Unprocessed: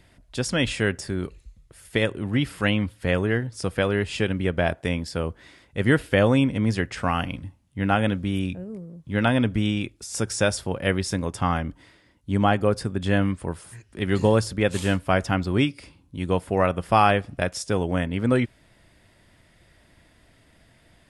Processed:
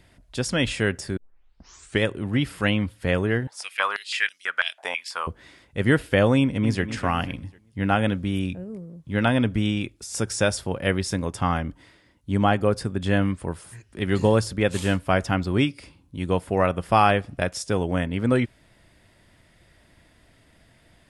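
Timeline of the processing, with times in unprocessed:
1.17 tape start 0.86 s
3.47–5.27 stepped high-pass 6.1 Hz 820–5400 Hz
6.38–6.83 echo throw 0.25 s, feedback 35%, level -11 dB

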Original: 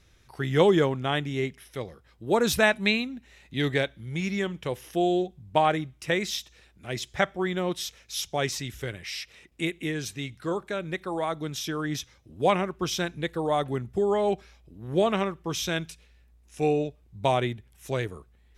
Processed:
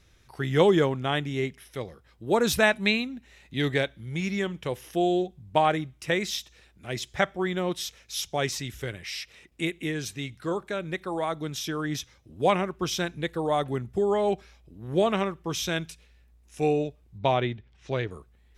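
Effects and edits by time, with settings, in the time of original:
17.18–18.11 LPF 5000 Hz 24 dB/oct

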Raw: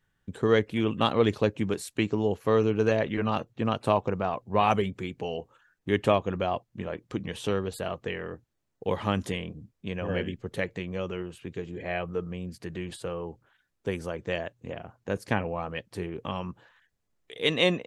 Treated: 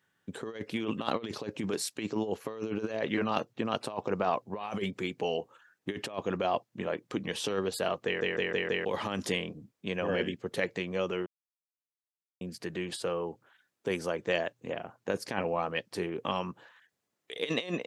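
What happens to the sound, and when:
8.05 stutter in place 0.16 s, 5 plays
11.26–12.41 mute
whole clip: dynamic EQ 5100 Hz, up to +7 dB, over -57 dBFS, Q 2.5; negative-ratio compressor -28 dBFS, ratio -0.5; Bessel high-pass 240 Hz, order 2

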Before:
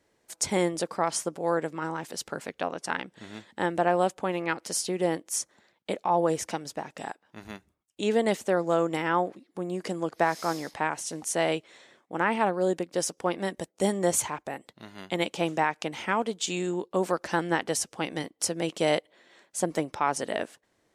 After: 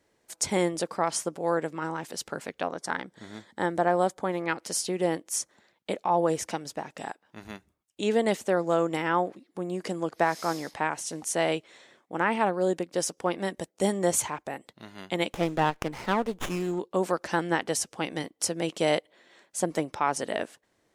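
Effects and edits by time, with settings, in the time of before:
2.67–4.48 bell 2700 Hz -15 dB 0.21 oct
15.33–16.79 running maximum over 9 samples

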